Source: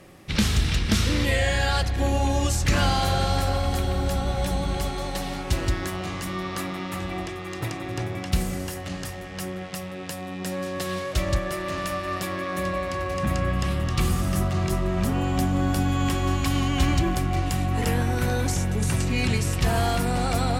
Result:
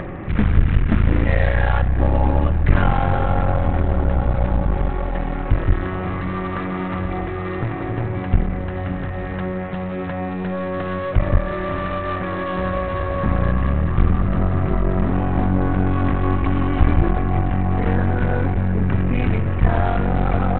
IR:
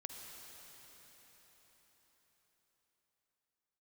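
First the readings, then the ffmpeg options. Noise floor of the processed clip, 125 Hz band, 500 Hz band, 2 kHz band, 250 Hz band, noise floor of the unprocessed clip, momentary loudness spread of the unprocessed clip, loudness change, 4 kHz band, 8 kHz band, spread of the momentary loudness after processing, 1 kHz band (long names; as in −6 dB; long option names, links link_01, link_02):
−26 dBFS, +5.5 dB, +4.5 dB, +1.5 dB, +5.0 dB, −35 dBFS, 9 LU, +4.5 dB, −11.0 dB, below −40 dB, 7 LU, +3.5 dB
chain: -af "lowpass=frequency=2000:width=0.5412,lowpass=frequency=2000:width=1.3066,lowshelf=frequency=76:gain=9.5,acompressor=mode=upward:threshold=-23dB:ratio=2.5,aresample=8000,aeval=exprs='clip(val(0),-1,0.0335)':channel_layout=same,aresample=44100,volume=5.5dB"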